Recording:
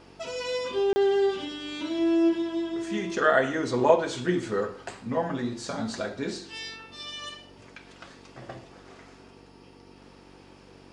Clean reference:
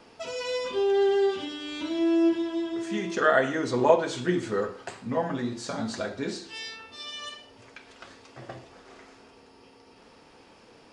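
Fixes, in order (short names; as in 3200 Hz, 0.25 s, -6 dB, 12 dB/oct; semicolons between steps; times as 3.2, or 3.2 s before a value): de-hum 47.5 Hz, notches 8; interpolate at 0.93, 30 ms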